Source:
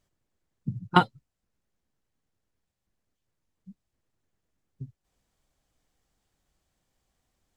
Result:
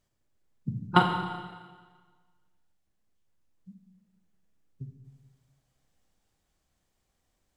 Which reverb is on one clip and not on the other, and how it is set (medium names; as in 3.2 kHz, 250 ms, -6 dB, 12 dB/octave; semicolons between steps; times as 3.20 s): Schroeder reverb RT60 1.5 s, combs from 29 ms, DRR 4 dB; trim -1.5 dB